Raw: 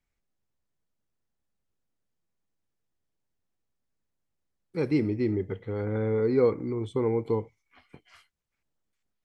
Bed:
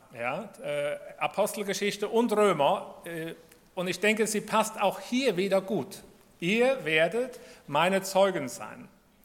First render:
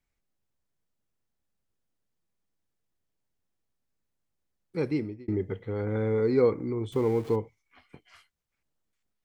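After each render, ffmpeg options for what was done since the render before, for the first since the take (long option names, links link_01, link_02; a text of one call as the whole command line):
ffmpeg -i in.wav -filter_complex "[0:a]asettb=1/sr,asplit=3[link_01][link_02][link_03];[link_01]atrim=end=5.884[link_04];[link_02]atrim=start=5.88:end=6.42,asetpts=PTS-STARTPTS,afade=type=in:duration=0.004:curve=qsin,afade=type=out:start_time=0.536:duration=0.004:curve=qsin,highshelf=frequency=4800:gain=8.5[link_05];[link_03]atrim=start=6.416[link_06];[link_04][link_05]acrossfade=duration=0.004:curve1=hsin:curve2=qsin[link_07];[link_07][link_06]acrossfade=duration=0.004:curve1=qsin:curve2=hsin,asettb=1/sr,asplit=3[link_08][link_09][link_10];[link_08]atrim=end=6.924[link_11];[link_09]atrim=start=6.92:end=7.36,asetpts=PTS-STARTPTS,afade=type=in:duration=0.004:curve=qsin,afade=type=out:start_time=0.436:duration=0.004:curve=qsin,aeval=exprs='val(0)+0.5*0.00841*sgn(val(0))':channel_layout=same[link_12];[link_10]atrim=start=7.356[link_13];[link_11][link_12]acrossfade=duration=0.004:curve1=hsin:curve2=qsin[link_14];[link_14][link_13]acrossfade=duration=0.004:curve1=qsin:curve2=hsin,asplit=2[link_15][link_16];[link_15]atrim=end=5.28,asetpts=PTS-STARTPTS,afade=type=out:start_time=4.77:duration=0.51[link_17];[link_16]atrim=start=5.28,asetpts=PTS-STARTPTS,afade=type=in:duration=0.004:curve=hsin[link_18];[link_17][link_18]concat=n=2:v=0:a=1" out.wav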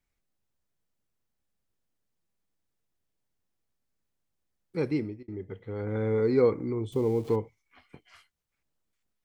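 ffmpeg -i in.wav -filter_complex "[0:a]asettb=1/sr,asplit=3[link_01][link_02][link_03];[link_01]atrim=end=6.814[link_04];[link_02]atrim=start=6.81:end=7.28,asetpts=PTS-STARTPTS,afade=type=in:duration=0.004:curve=qsin,afade=type=out:start_time=0.466:duration=0.004:curve=qsin,equalizer=frequency=1600:width_type=o:width=1.2:gain=-12.5[link_05];[link_03]atrim=start=7.276[link_06];[link_04][link_05]acrossfade=duration=0.004:curve1=hsin:curve2=qsin[link_07];[link_07][link_06]acrossfade=duration=0.004:curve1=qsin:curve2=hsin,asplit=2[link_08][link_09];[link_08]atrim=end=5.23,asetpts=PTS-STARTPTS,afade=type=out:start_time=5.226:duration=0.004:curve=hsin:silence=0.237137[link_10];[link_09]atrim=start=5.23,asetpts=PTS-STARTPTS,afade=type=in:duration=0.92:silence=0.237137[link_11];[link_10][link_11]concat=n=2:v=0:a=1" out.wav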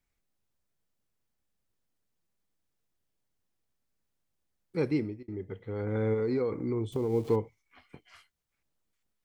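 ffmpeg -i in.wav -filter_complex "[0:a]asplit=3[link_01][link_02][link_03];[link_01]afade=type=out:start_time=6.13:duration=0.02[link_04];[link_02]acompressor=threshold=-25dB:ratio=10:attack=3.2:release=140:knee=1:detection=peak,afade=type=in:start_time=6.13:duration=0.02,afade=type=out:start_time=7.12:duration=0.02[link_05];[link_03]afade=type=in:start_time=7.12:duration=0.02[link_06];[link_04][link_05][link_06]amix=inputs=3:normalize=0" out.wav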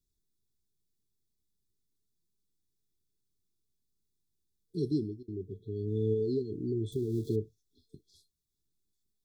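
ffmpeg -i in.wav -af "equalizer=frequency=250:width_type=o:width=0.65:gain=-3,afftfilt=real='re*(1-between(b*sr/4096,450,3300))':imag='im*(1-between(b*sr/4096,450,3300))':win_size=4096:overlap=0.75" out.wav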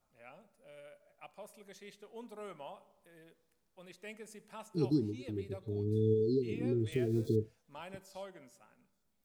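ffmpeg -i in.wav -i bed.wav -filter_complex "[1:a]volume=-23.5dB[link_01];[0:a][link_01]amix=inputs=2:normalize=0" out.wav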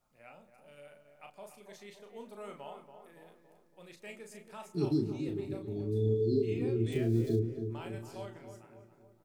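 ffmpeg -i in.wav -filter_complex "[0:a]asplit=2[link_01][link_02];[link_02]adelay=35,volume=-5.5dB[link_03];[link_01][link_03]amix=inputs=2:normalize=0,asplit=2[link_04][link_05];[link_05]adelay=281,lowpass=frequency=1500:poles=1,volume=-8dB,asplit=2[link_06][link_07];[link_07]adelay=281,lowpass=frequency=1500:poles=1,volume=0.55,asplit=2[link_08][link_09];[link_09]adelay=281,lowpass=frequency=1500:poles=1,volume=0.55,asplit=2[link_10][link_11];[link_11]adelay=281,lowpass=frequency=1500:poles=1,volume=0.55,asplit=2[link_12][link_13];[link_13]adelay=281,lowpass=frequency=1500:poles=1,volume=0.55,asplit=2[link_14][link_15];[link_15]adelay=281,lowpass=frequency=1500:poles=1,volume=0.55,asplit=2[link_16][link_17];[link_17]adelay=281,lowpass=frequency=1500:poles=1,volume=0.55[link_18];[link_06][link_08][link_10][link_12][link_14][link_16][link_18]amix=inputs=7:normalize=0[link_19];[link_04][link_19]amix=inputs=2:normalize=0" out.wav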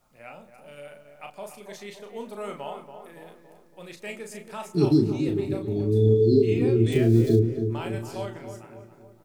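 ffmpeg -i in.wav -af "volume=10.5dB" out.wav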